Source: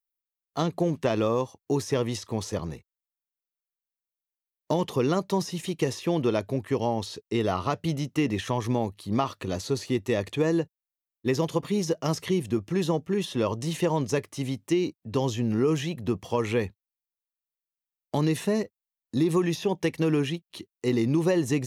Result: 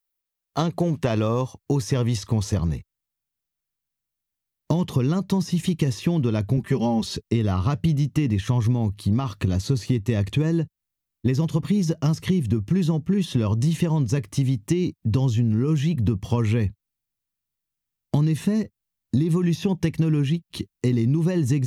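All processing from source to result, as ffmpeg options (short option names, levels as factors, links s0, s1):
-filter_complex "[0:a]asettb=1/sr,asplit=3[s0][s1][s2];[s0]atrim=end=6.574[s3];[s1]atrim=start=6.57:end=7.17,asetpts=PTS-STARTPTS,afade=t=in:d=0.004:c=qsin,afade=t=out:st=0.596:d=0.004:c=qsin,equalizer=f=110:w=5.6:g=-6,aecho=1:1:5.1:0.93,atrim=end_sample=26460[s4];[s2]atrim=start=7.166[s5];[s3][s4]acrossfade=d=0.004:c1=hsin:c2=qsin[s6];[s6][s5]acrossfade=d=0.004:c1=qsin:c2=hsin,asubboost=boost=6:cutoff=200,acompressor=threshold=0.0562:ratio=6,volume=2.11"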